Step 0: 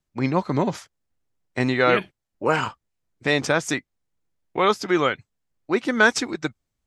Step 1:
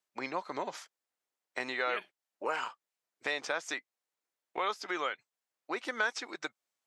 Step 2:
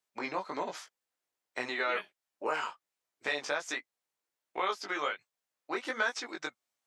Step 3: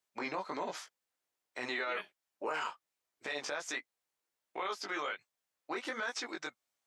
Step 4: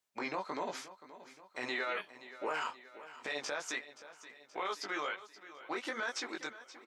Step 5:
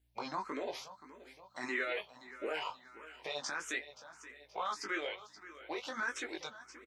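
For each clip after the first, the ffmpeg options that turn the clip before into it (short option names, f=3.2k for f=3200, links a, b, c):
-filter_complex "[0:a]acrossover=split=6400[a][b];[b]acompressor=threshold=-45dB:ratio=4:attack=1:release=60[c];[a][c]amix=inputs=2:normalize=0,highpass=590,acompressor=threshold=-35dB:ratio=2,volume=-2dB"
-af "flanger=delay=16:depth=5:speed=1.3,volume=4dB"
-af "alimiter=level_in=3dB:limit=-24dB:level=0:latency=1:release=21,volume=-3dB"
-af "aecho=1:1:526|1052|1578|2104|2630:0.168|0.094|0.0526|0.0295|0.0165"
-filter_complex "[0:a]asplit=2[a][b];[b]adelay=19,volume=-13.5dB[c];[a][c]amix=inputs=2:normalize=0,aeval=exprs='val(0)+0.0002*(sin(2*PI*60*n/s)+sin(2*PI*2*60*n/s)/2+sin(2*PI*3*60*n/s)/3+sin(2*PI*4*60*n/s)/4+sin(2*PI*5*60*n/s)/5)':c=same,asplit=2[d][e];[e]afreqshift=1.6[f];[d][f]amix=inputs=2:normalize=1,volume=2dB"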